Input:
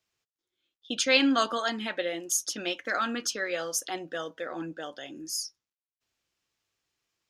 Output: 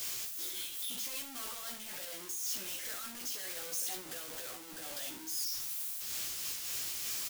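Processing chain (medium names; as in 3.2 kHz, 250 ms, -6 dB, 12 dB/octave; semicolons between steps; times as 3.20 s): one-bit comparator; pre-emphasis filter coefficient 0.8; on a send: early reflections 16 ms -4.5 dB, 69 ms -8 dB; on the sum: random flutter of the level, depth 55%; trim -2.5 dB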